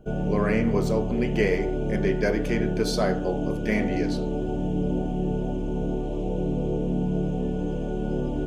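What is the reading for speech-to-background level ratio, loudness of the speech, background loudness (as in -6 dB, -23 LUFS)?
0.5 dB, -27.5 LUFS, -28.0 LUFS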